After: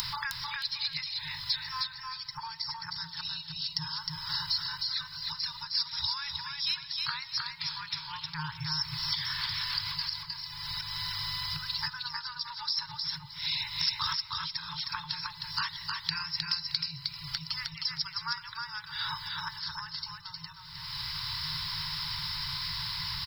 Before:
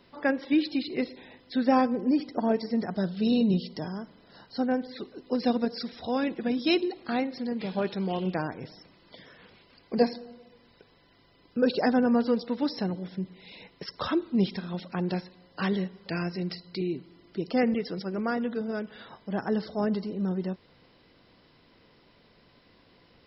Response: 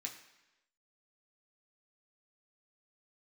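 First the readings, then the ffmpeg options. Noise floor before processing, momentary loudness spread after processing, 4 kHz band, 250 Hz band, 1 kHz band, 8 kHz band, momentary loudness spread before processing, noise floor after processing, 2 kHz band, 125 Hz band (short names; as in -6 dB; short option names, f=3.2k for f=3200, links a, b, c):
-61 dBFS, 7 LU, +11.5 dB, under -25 dB, -5.0 dB, n/a, 15 LU, -47 dBFS, +0.5 dB, -7.5 dB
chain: -filter_complex "[0:a]acompressor=mode=upward:threshold=-35dB:ratio=2.5,aexciter=amount=4:drive=7.1:freq=4k,acompressor=threshold=-36dB:ratio=6,afftfilt=real='re*(1-between(b*sr/4096,170,840))':imag='im*(1-between(b*sr/4096,170,840))':win_size=4096:overlap=0.75,asplit=2[a][b];[b]aecho=0:1:311|622|933:0.668|0.147|0.0323[c];[a][c]amix=inputs=2:normalize=0,volume=8.5dB"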